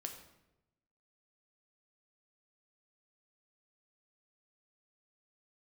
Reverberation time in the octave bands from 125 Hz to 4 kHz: 1.2, 1.1, 1.0, 0.85, 0.75, 0.65 seconds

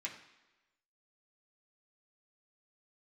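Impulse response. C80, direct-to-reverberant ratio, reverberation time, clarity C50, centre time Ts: 11.0 dB, −4.0 dB, 1.1 s, 8.5 dB, 22 ms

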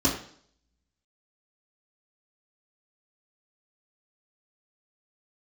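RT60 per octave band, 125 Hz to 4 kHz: 0.60, 0.60, 0.60, 0.55, 0.55, 0.60 seconds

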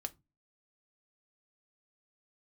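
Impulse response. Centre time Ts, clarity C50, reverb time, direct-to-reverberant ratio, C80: 2 ms, 24.0 dB, 0.25 s, 7.5 dB, 32.0 dB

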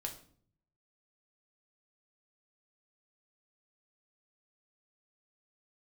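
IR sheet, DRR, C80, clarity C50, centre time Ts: 2.5 dB, 14.5 dB, 10.5 dB, 14 ms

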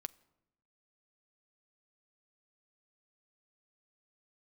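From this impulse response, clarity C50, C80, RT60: 23.0 dB, 25.0 dB, 0.90 s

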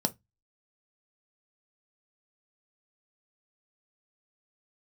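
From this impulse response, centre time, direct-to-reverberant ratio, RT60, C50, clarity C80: 4 ms, 7.0 dB, 0.15 s, 23.5 dB, 37.0 dB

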